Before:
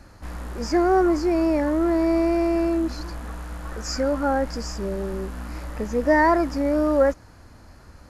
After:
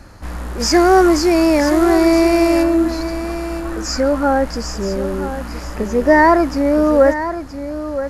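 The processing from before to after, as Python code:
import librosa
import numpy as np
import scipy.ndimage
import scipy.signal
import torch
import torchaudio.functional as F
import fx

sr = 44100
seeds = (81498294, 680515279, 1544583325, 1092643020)

y = fx.high_shelf(x, sr, hz=2100.0, db=11.5, at=(0.59, 2.62), fade=0.02)
y = y + 10.0 ** (-11.0 / 20.0) * np.pad(y, (int(973 * sr / 1000.0), 0))[:len(y)]
y = y * 10.0 ** (7.0 / 20.0)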